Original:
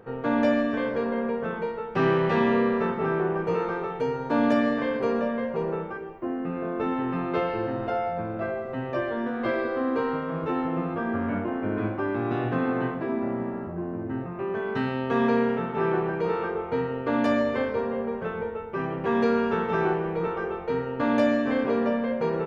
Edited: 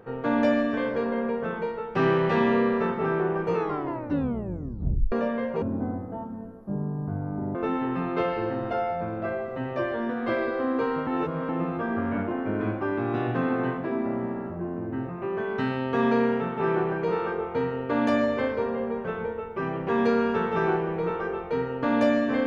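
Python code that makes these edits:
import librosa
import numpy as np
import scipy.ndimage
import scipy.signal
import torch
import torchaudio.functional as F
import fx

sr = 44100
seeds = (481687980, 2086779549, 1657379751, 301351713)

y = fx.edit(x, sr, fx.tape_stop(start_s=3.54, length_s=1.58),
    fx.speed_span(start_s=5.62, length_s=1.1, speed=0.57),
    fx.reverse_span(start_s=10.24, length_s=0.42), tone=tone)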